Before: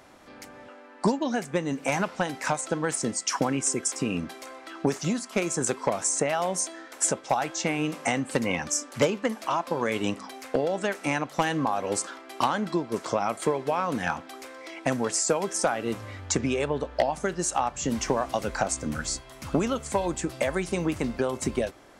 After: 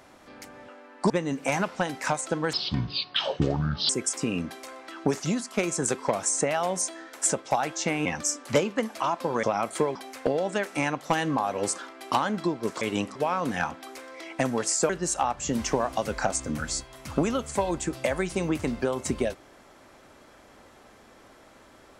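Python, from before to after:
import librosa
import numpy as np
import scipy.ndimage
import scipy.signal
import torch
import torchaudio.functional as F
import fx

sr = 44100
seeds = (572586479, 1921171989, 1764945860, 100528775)

y = fx.edit(x, sr, fx.cut(start_s=1.1, length_s=0.4),
    fx.speed_span(start_s=2.93, length_s=0.75, speed=0.55),
    fx.cut(start_s=7.84, length_s=0.68),
    fx.swap(start_s=9.9, length_s=0.34, other_s=13.1, other_length_s=0.52),
    fx.cut(start_s=15.36, length_s=1.9), tone=tone)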